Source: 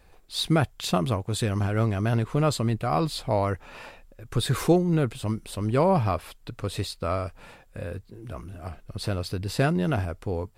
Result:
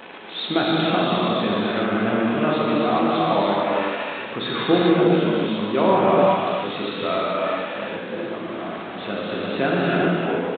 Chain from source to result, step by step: jump at every zero crossing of -30.5 dBFS; Chebyshev high-pass 220 Hz, order 3; delay 294 ms -10 dB; gated-style reverb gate 460 ms flat, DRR -6 dB; G.726 40 kbps 8 kHz

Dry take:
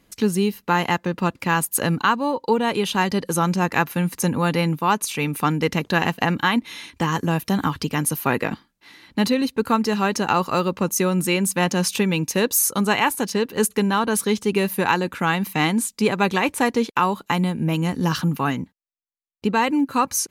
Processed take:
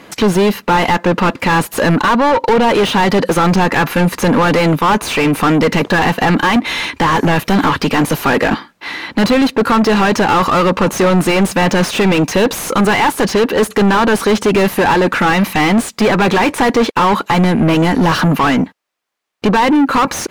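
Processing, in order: overdrive pedal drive 34 dB, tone 1.3 kHz, clips at -5 dBFS; trim +2 dB

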